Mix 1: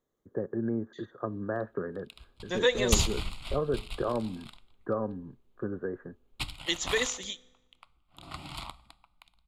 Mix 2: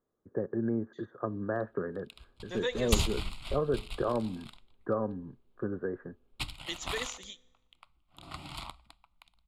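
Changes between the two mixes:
second voice -8.5 dB; background: send -10.0 dB

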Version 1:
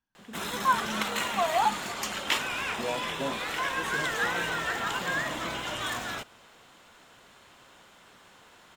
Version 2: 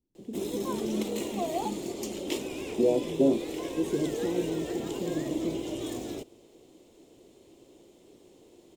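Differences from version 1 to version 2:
first voice: add low shelf 220 Hz +9.5 dB; second voice +6.5 dB; master: add EQ curve 210 Hz 0 dB, 340 Hz +14 dB, 1500 Hz -26 dB, 2200 Hz -13 dB, 7000 Hz -4 dB

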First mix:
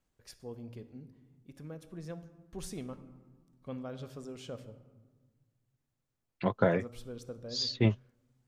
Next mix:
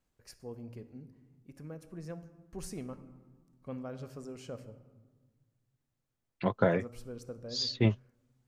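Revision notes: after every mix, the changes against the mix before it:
first voice: add bell 3500 Hz -12.5 dB 0.3 oct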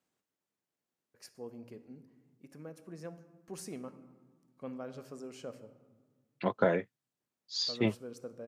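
first voice: entry +0.95 s; master: add HPF 200 Hz 12 dB/oct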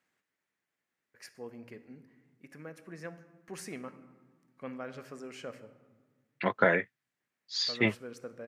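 master: add bell 1900 Hz +13 dB 1.1 oct

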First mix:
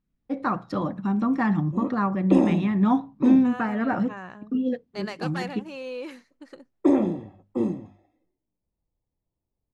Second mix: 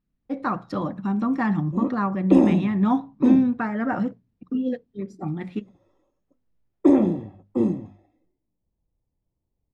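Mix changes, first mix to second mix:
second voice: muted; background: add low shelf 380 Hz +5.5 dB

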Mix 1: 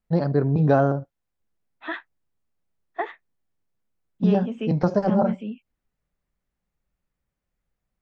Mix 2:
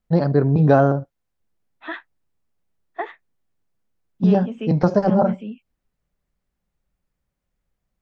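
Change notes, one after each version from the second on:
first voice +4.0 dB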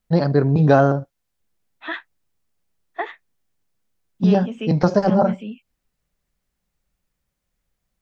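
master: add high shelf 2200 Hz +8.5 dB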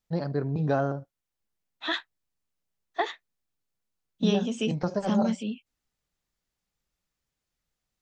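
first voice -12.0 dB; second voice: add resonant high shelf 3400 Hz +14 dB, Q 1.5

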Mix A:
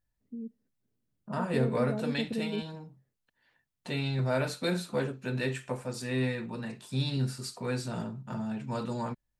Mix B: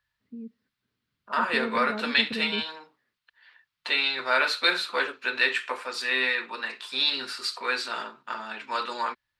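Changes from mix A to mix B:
second voice: add HPF 340 Hz 24 dB/oct; master: add band shelf 2200 Hz +14.5 dB 2.6 oct

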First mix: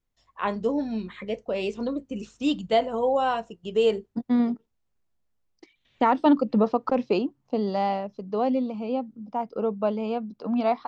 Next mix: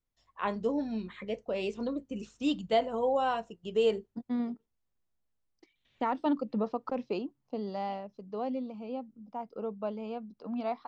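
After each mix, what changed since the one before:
first voice -5.0 dB; second voice -10.0 dB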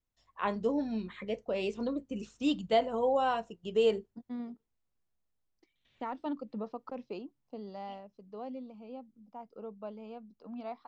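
second voice -7.5 dB

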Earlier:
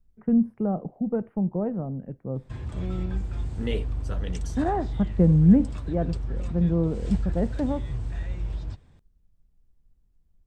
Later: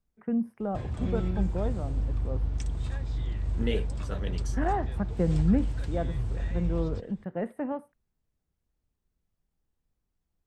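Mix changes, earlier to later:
first voice: add tilt +3.5 dB/oct; background: entry -1.75 s

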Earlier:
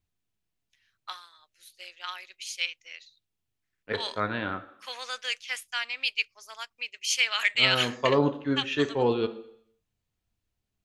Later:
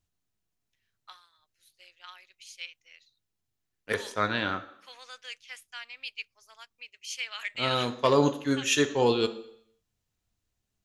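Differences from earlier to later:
first voice -10.5 dB; second voice: remove air absorption 340 m

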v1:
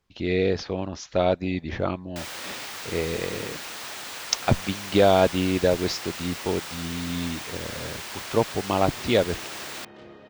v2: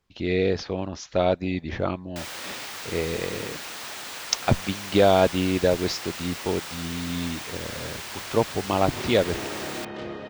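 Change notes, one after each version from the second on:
second sound +11.0 dB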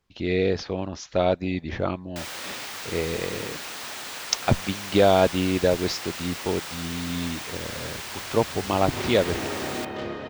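reverb: on, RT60 2.2 s

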